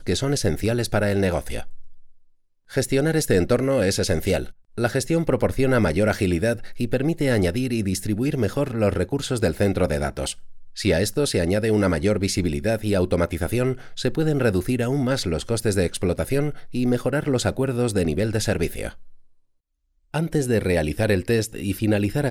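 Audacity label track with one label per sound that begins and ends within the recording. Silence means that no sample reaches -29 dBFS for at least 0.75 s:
2.730000	18.890000	sound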